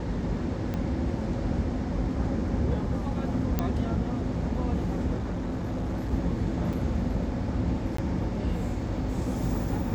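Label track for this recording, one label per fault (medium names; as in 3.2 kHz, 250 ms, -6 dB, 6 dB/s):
0.740000	0.740000	pop -19 dBFS
3.590000	3.590000	pop -12 dBFS
5.160000	6.130000	clipped -27 dBFS
6.730000	6.740000	dropout 5.1 ms
7.970000	7.980000	dropout 14 ms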